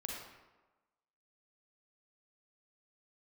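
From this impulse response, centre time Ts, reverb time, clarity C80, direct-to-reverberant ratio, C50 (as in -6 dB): 67 ms, 1.2 s, 3.0 dB, -2.0 dB, 0.0 dB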